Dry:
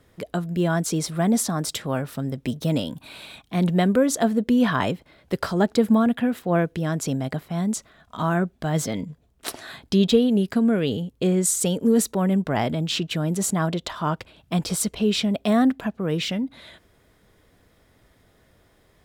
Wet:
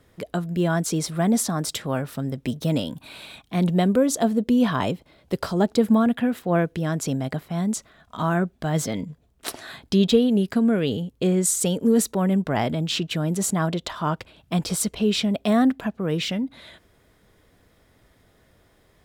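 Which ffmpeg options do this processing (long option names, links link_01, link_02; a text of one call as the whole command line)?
ffmpeg -i in.wav -filter_complex "[0:a]asettb=1/sr,asplit=3[link_01][link_02][link_03];[link_01]atrim=end=3.634[link_04];[link_02]atrim=start=3.63:end=5.81,asetpts=PTS-STARTPTS,afade=type=in:duration=0.004:curve=qsin,afade=type=out:start_time=2.176:duration=0.004:curve=qsin,equalizer=frequency=1700:width=1.5:gain=-5[link_05];[link_03]atrim=start=5.806[link_06];[link_04][link_05]acrossfade=duration=0.004:curve1=hsin:curve2=qsin[link_07];[link_07][link_06]acrossfade=duration=0.004:curve1=qsin:curve2=hsin" out.wav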